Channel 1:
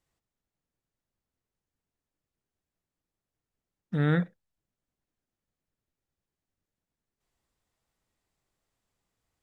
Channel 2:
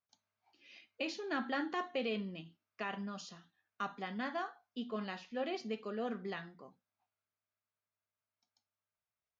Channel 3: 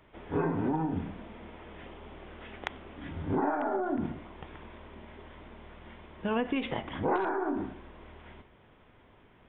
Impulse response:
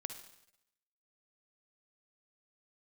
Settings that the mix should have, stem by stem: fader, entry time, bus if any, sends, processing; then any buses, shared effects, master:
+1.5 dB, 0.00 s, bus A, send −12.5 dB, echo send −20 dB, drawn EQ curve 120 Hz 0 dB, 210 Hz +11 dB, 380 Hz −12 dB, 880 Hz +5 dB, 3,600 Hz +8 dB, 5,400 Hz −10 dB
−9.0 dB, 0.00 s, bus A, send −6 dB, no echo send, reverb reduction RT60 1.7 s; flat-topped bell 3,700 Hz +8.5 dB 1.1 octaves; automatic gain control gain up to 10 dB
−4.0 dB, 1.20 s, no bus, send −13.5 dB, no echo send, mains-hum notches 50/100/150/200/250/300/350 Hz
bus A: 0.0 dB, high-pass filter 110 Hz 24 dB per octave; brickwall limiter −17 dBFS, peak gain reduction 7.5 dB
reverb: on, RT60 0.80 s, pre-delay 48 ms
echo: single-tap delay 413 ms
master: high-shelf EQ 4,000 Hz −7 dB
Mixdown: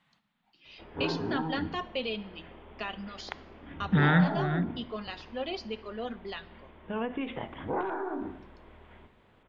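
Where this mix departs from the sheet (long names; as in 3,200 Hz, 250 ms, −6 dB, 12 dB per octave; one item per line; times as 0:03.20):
stem 1 +1.5 dB → +9.5 dB
stem 3: entry 1.20 s → 0.65 s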